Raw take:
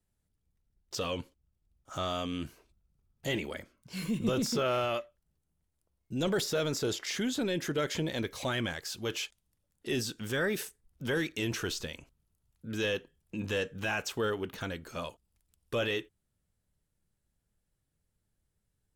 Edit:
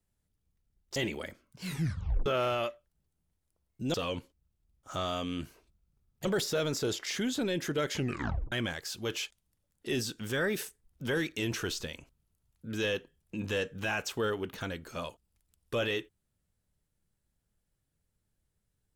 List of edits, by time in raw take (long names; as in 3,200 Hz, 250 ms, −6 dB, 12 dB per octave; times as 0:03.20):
0:00.96–0:03.27: move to 0:06.25
0:03.97: tape stop 0.60 s
0:07.94: tape stop 0.58 s